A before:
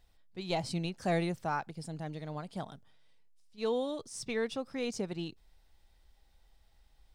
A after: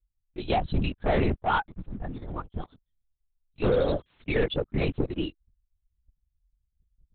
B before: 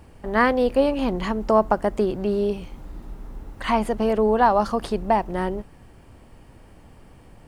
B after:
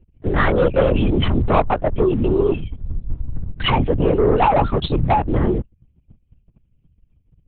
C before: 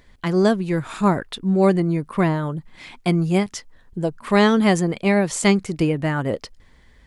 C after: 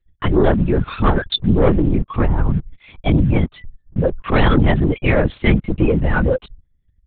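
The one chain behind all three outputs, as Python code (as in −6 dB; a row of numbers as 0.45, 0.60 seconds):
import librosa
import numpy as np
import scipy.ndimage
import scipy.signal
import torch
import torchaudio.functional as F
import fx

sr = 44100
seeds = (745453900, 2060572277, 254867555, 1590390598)

p1 = fx.bin_expand(x, sr, power=2.0)
p2 = fx.over_compress(p1, sr, threshold_db=-33.0, ratio=-1.0)
p3 = p1 + (p2 * librosa.db_to_amplitude(1.5))
p4 = fx.leveller(p3, sr, passes=2)
y = fx.lpc_vocoder(p4, sr, seeds[0], excitation='whisper', order=8)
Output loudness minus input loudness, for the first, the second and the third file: +7.5, +3.5, +2.5 LU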